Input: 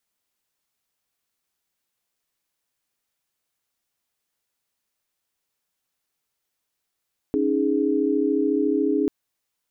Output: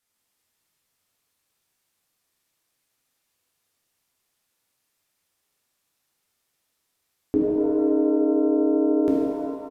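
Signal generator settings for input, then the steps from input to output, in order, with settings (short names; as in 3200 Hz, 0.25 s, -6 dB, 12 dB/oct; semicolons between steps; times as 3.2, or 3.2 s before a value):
chord C#4/D#4/G#4 sine, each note -23 dBFS 1.74 s
downsampling 32000 Hz; shimmer reverb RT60 1.7 s, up +7 st, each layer -8 dB, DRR -4 dB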